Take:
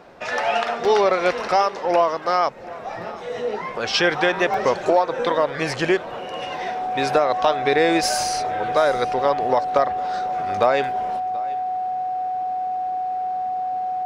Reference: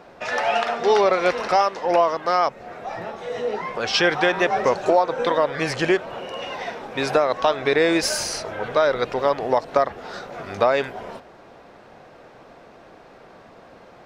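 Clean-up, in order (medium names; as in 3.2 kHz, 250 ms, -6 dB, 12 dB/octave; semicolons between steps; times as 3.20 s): clip repair -5.5 dBFS; band-stop 740 Hz, Q 30; interpolate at 0.85/4.54 s, 1.9 ms; inverse comb 731 ms -20.5 dB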